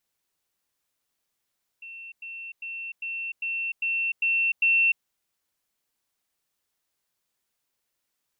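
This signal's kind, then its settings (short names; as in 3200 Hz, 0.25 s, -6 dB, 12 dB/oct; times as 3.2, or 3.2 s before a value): level ladder 2700 Hz -38.5 dBFS, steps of 3 dB, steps 8, 0.30 s 0.10 s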